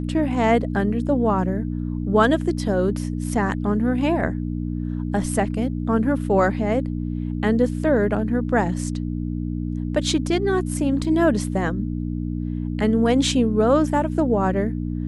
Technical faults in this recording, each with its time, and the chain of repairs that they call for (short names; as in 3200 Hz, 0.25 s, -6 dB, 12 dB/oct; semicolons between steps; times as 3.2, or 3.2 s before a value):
hum 60 Hz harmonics 5 -26 dBFS
11.04 gap 3.9 ms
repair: de-hum 60 Hz, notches 5; interpolate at 11.04, 3.9 ms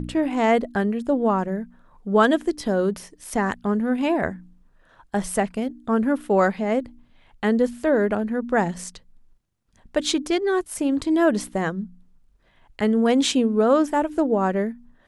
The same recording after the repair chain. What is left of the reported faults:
none